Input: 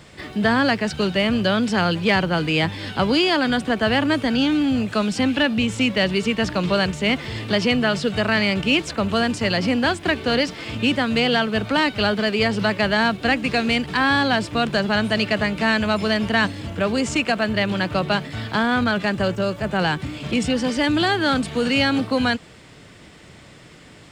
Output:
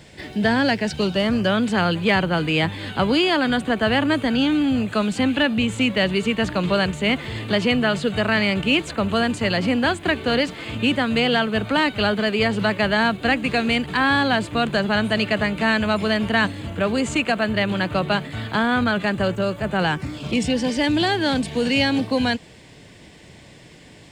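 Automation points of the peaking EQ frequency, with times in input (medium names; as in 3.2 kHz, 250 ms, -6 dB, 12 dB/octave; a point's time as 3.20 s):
peaking EQ -14.5 dB 0.24 oct
0.92 s 1.2 kHz
1.59 s 5.4 kHz
19.85 s 5.4 kHz
20.41 s 1.3 kHz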